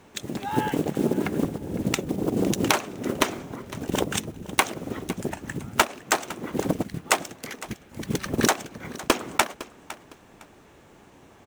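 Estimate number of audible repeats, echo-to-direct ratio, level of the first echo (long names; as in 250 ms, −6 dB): 2, −17.0 dB, −17.0 dB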